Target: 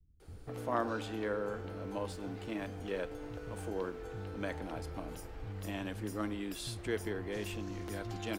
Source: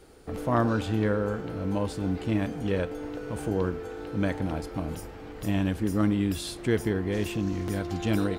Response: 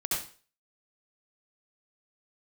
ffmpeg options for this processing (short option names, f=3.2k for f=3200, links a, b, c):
-filter_complex "[0:a]acrossover=split=160[a][b];[b]adelay=200[c];[a][c]amix=inputs=2:normalize=0,acrossover=split=270|1600[d][e][f];[d]acompressor=threshold=-40dB:ratio=6[g];[g][e][f]amix=inputs=3:normalize=0,asettb=1/sr,asplit=3[h][i][j];[h]atrim=end=2.114[k];[i]atrim=start=2.11:end=4.02,asetpts=PTS-STARTPTS,afade=t=in:d=0.004:c=qsin,afade=t=out:st=1.906:d=0.004:c=qsin,aeval=exprs='sgn(val(0))*max(abs(val(0))-0.002,0)':c=same[l];[j]atrim=start=4.016[m];[k][l]acrossfade=d=0.004:c1=hsin:c2=qsin[n];[n][m]acrossfade=d=0.004:c1=qsin:c2=hsin,asubboost=boost=2.5:cutoff=120,volume=-6.5dB"